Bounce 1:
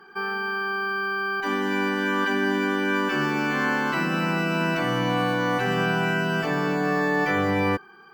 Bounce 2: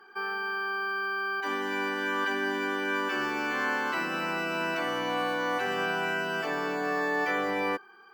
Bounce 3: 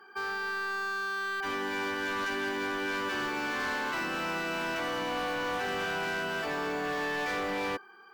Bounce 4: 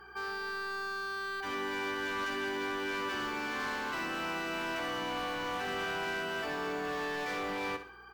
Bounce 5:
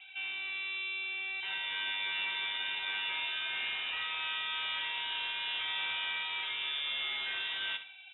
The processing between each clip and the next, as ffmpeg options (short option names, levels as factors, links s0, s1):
-af "highpass=350,volume=0.631"
-af "volume=29.9,asoftclip=hard,volume=0.0335"
-af "alimiter=level_in=3.35:limit=0.0631:level=0:latency=1,volume=0.299,aeval=exprs='val(0)+0.000501*(sin(2*PI*60*n/s)+sin(2*PI*2*60*n/s)/2+sin(2*PI*3*60*n/s)/3+sin(2*PI*4*60*n/s)/4+sin(2*PI*5*60*n/s)/5)':c=same,aecho=1:1:64|128|192|256:0.282|0.101|0.0365|0.0131,volume=1.19"
-filter_complex "[0:a]acrossover=split=430[s0][s1];[s0]acrusher=samples=38:mix=1:aa=0.000001:lfo=1:lforange=60.8:lforate=0.83[s2];[s2][s1]amix=inputs=2:normalize=0,lowpass=f=3300:t=q:w=0.5098,lowpass=f=3300:t=q:w=0.6013,lowpass=f=3300:t=q:w=0.9,lowpass=f=3300:t=q:w=2.563,afreqshift=-3900"